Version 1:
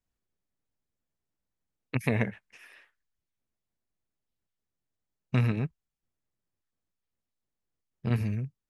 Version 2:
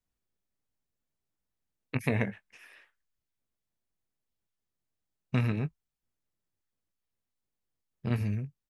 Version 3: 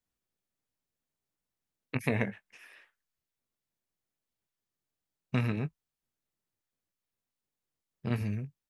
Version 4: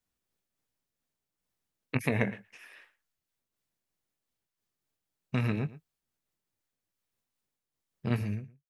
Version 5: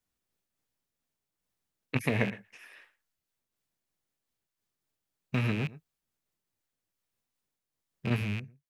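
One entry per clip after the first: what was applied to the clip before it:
doubler 20 ms -12.5 dB; gain -1.5 dB
low shelf 77 Hz -8.5 dB
ending faded out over 0.60 s; echo 0.114 s -18.5 dB; noise-modulated level, depth 55%; gain +4.5 dB
rattling part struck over -37 dBFS, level -27 dBFS

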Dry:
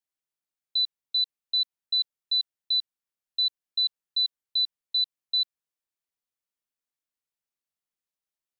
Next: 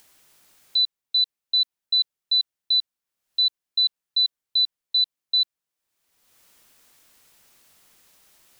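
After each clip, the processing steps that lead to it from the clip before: upward compressor, threshold -39 dBFS; gain +4.5 dB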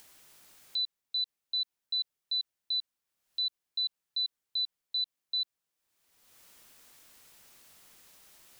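limiter -26.5 dBFS, peak gain reduction 11 dB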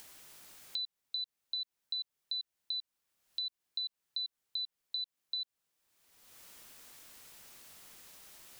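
compressor, threshold -39 dBFS, peak gain reduction 10 dB; gain +3 dB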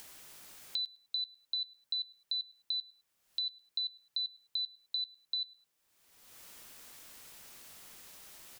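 feedback echo 0.105 s, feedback 26%, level -22 dB; gain +2 dB

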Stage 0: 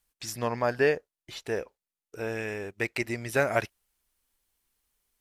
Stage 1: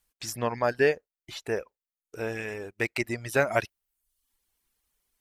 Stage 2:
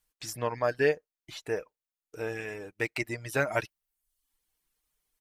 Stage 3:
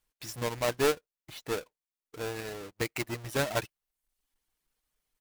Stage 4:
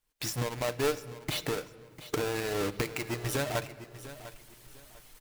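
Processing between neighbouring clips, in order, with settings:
reverb removal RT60 0.66 s; gain +1.5 dB
comb 6.5 ms, depth 39%; gain -3.5 dB
half-waves squared off; gain -5.5 dB
recorder AGC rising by 65 dB/s; feedback echo 0.699 s, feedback 26%, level -14.5 dB; shoebox room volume 1900 m³, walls mixed, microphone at 0.4 m; gain -3.5 dB

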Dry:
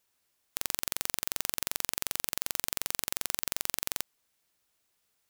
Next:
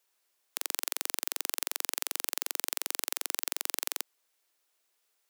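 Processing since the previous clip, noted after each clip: HPF 320 Hz 24 dB/oct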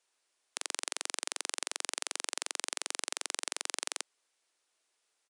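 downsampling 22050 Hz

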